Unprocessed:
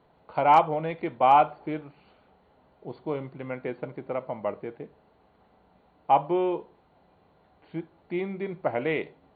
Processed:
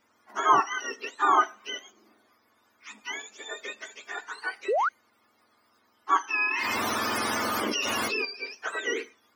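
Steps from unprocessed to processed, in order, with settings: spectrum inverted on a logarithmic axis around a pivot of 960 Hz; 4.68–4.89 s: painted sound rise 360–1600 Hz -24 dBFS; 6.47–8.25 s: level flattener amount 100%

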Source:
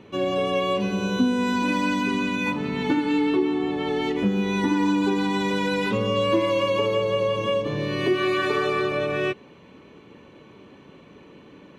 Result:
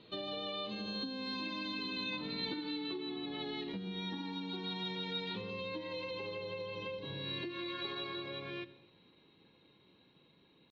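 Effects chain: Doppler pass-by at 3.10 s, 22 m/s, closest 26 m; simulated room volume 3800 m³, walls furnished, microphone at 0.67 m; compression 10:1, threshold -35 dBFS, peak gain reduction 17.5 dB; four-pole ladder low-pass 4.1 kHz, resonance 90%; tempo 1.1×; trim +9.5 dB

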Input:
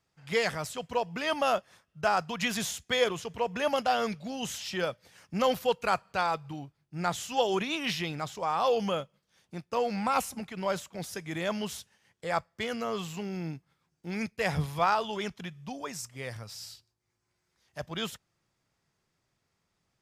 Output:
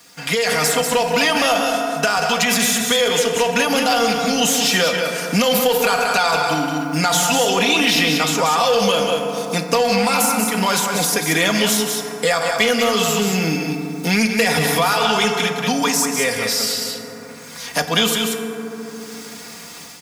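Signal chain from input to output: on a send at -7 dB: reverberation RT60 1.8 s, pre-delay 3 ms; on the sum: peak limiter -23 dBFS, peak gain reduction 10.5 dB; high-pass 140 Hz; treble shelf 8.6 kHz +5.5 dB; comb 4.2 ms, depth 70%; in parallel at -3 dB: saturation -30 dBFS, distortion -10 dB; on the sum: treble shelf 2.1 kHz +8 dB; level rider; delay 185 ms -7 dB; three bands compressed up and down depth 70%; trim -2 dB

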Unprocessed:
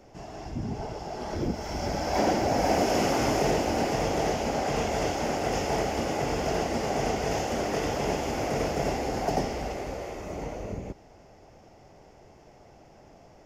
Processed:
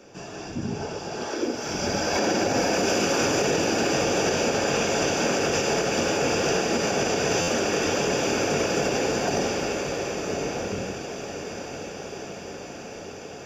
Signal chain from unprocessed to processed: 1.24–1.65 s: brick-wall FIR high-pass 230 Hz; echo that smears into a reverb 1084 ms, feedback 71%, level -11 dB; reverberation RT60 0.85 s, pre-delay 3 ms, DRR 14 dB; peak limiter -13 dBFS, peak gain reduction 6.5 dB; treble shelf 2.3 kHz +9 dB; buffer glitch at 7.41 s, samples 512, times 5; trim -2.5 dB

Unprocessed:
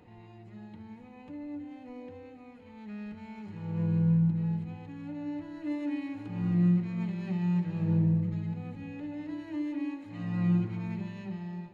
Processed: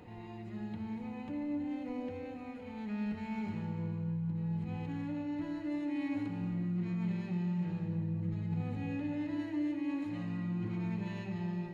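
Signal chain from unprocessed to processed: reverse; compression 6:1, threshold -38 dBFS, peak gain reduction 15.5 dB; reverse; reverberation RT60 1.8 s, pre-delay 72 ms, DRR 5.5 dB; trim +4 dB

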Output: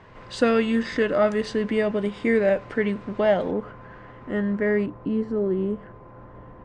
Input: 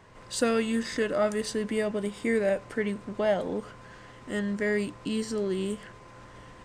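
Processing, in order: low-pass 3.5 kHz 12 dB/octave, from 3.51 s 1.7 kHz, from 4.86 s 1 kHz; trim +5.5 dB

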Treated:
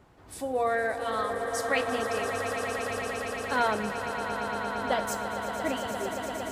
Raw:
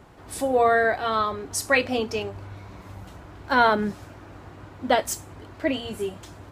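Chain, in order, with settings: echo with a slow build-up 115 ms, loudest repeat 8, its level -10.5 dB; 0.69–1.90 s: loudspeaker Doppler distortion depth 0.11 ms; trim -8 dB

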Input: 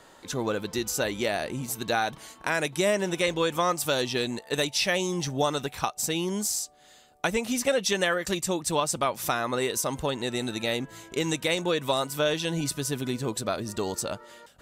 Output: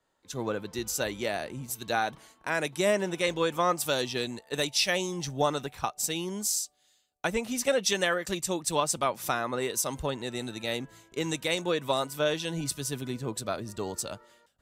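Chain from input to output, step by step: three bands expanded up and down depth 70%; trim -2.5 dB

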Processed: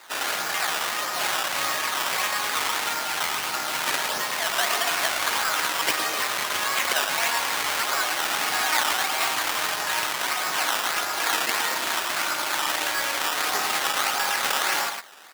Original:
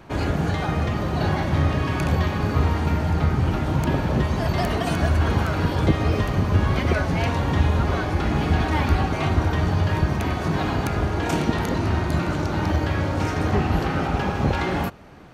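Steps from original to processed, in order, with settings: delay 112 ms -6.5 dB; decimation with a swept rate 14×, swing 100% 1.6 Hz; high-pass 1.2 kHz 12 dB/octave; trim +6.5 dB

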